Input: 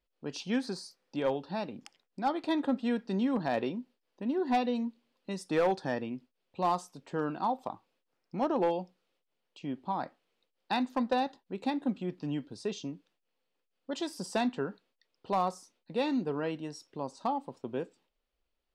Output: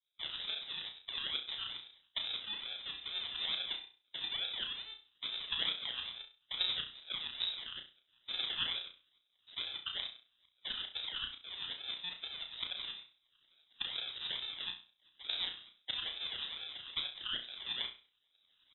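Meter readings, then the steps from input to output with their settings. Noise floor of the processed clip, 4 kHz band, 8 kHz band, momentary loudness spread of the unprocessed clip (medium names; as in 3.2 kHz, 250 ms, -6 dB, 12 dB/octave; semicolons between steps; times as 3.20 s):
-78 dBFS, +12.0 dB, under -30 dB, 13 LU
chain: spectrogram pixelated in time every 100 ms; recorder AGC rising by 20 dB/s; high-pass 200 Hz 6 dB/octave; comb 5.7 ms, depth 66%; harmonic-percussive split harmonic -12 dB; in parallel at +1 dB: compression, threshold -47 dBFS, peak gain reduction 16 dB; on the sum: decimation with a swept rate 38×, swing 60% 2.3 Hz; tremolo saw up 11 Hz, depth 70%; frequency inversion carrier 3.8 kHz; on a send: flutter echo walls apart 5.7 m, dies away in 0.34 s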